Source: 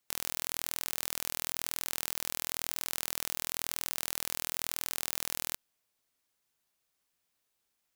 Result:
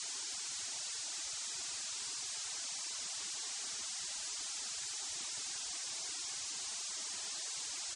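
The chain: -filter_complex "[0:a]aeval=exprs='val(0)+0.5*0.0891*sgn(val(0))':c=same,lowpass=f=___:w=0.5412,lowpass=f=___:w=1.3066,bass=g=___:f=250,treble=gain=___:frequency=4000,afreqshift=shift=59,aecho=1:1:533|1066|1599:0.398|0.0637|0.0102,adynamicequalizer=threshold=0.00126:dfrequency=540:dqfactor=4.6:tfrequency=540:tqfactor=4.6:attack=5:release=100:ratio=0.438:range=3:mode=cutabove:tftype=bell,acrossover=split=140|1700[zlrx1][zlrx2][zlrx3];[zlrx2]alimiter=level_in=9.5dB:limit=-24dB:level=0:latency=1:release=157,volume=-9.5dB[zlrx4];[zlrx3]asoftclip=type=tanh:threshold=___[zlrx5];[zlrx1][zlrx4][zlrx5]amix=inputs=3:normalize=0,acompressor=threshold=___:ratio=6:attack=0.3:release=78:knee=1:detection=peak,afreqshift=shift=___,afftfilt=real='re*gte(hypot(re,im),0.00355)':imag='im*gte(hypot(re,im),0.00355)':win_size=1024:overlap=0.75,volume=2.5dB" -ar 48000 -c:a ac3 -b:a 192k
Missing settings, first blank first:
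7500, 7500, -6, 12, -24.5dB, -43dB, -19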